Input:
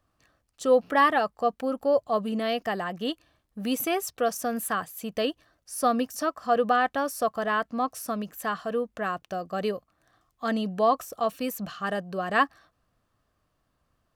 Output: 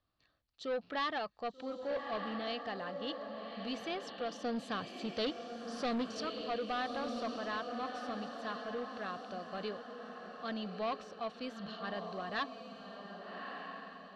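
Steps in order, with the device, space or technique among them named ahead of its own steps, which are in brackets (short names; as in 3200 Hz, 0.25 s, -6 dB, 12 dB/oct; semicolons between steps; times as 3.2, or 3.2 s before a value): 4.44–6.21 graphic EQ 125/250/500/4000/8000 Hz +10/+5/+7/+7/+6 dB; diffused feedback echo 1.2 s, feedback 43%, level -7.5 dB; overdriven synthesiser ladder filter (soft clip -19.5 dBFS, distortion -11 dB; ladder low-pass 4700 Hz, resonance 55%); gain -1.5 dB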